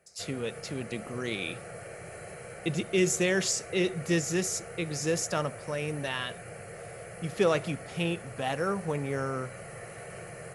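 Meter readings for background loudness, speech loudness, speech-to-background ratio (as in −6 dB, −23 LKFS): −43.5 LKFS, −31.0 LKFS, 12.5 dB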